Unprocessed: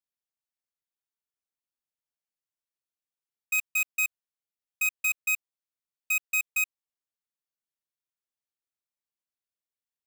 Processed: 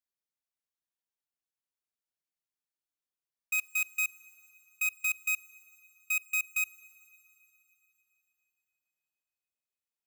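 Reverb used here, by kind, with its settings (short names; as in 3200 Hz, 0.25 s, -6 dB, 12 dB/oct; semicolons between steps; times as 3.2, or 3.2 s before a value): FDN reverb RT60 3.7 s, high-frequency decay 1×, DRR 18.5 dB; gain -3.5 dB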